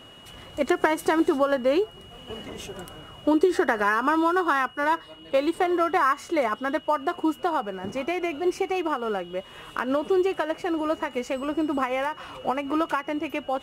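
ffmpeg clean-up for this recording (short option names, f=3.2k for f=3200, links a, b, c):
-af "bandreject=f=2.9k:w=30"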